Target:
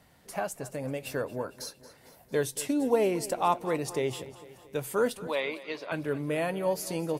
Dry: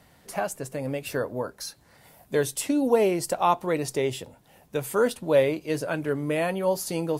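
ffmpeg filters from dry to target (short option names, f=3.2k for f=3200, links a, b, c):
-filter_complex "[0:a]asettb=1/sr,asplit=3[a][b][c];[a]atrim=end=5.274[d];[b]atrim=start=5.27:end=5.92,asetpts=PTS-STARTPTS,afade=t=in:d=0.004:c=qsin,afade=t=out:st=0.646:d=0.004:c=qsin,highpass=460,equalizer=f=540:t=q:w=4:g=-8,equalizer=f=1.1k:t=q:w=4:g=6,equalizer=f=1.5k:t=q:w=4:g=-6,equalizer=f=2.2k:t=q:w=4:g=6,equalizer=f=3.8k:t=q:w=4:g=7,lowpass=f=4.7k:w=0.5412,lowpass=f=4.7k:w=1.3066[e];[c]atrim=start=5.916[f];[d][e]acrossfade=d=0.004:c1=hsin:c2=qsin[g];[g][f]acrossfade=d=0.004:c1=qsin:c2=hsin,asplit=2[h][i];[i]aecho=0:1:227|454|681|908|1135:0.141|0.0791|0.0443|0.0248|0.0139[j];[h][j]amix=inputs=2:normalize=0,volume=-4dB"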